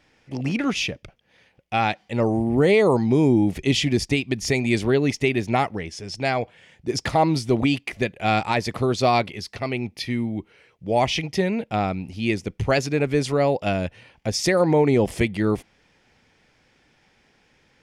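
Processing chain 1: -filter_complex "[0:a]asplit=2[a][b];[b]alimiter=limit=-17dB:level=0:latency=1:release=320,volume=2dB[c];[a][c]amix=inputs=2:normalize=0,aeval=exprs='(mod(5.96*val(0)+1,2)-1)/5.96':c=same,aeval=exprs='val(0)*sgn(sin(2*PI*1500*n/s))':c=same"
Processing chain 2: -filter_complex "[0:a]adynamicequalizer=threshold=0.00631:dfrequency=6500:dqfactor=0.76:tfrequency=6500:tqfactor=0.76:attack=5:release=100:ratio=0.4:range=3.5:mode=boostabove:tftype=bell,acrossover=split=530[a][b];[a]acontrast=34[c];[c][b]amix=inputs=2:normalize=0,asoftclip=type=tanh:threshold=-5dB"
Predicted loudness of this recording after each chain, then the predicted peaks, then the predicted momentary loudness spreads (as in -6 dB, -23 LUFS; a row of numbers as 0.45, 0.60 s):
-20.5, -19.5 LUFS; -15.5, -6.5 dBFS; 6, 10 LU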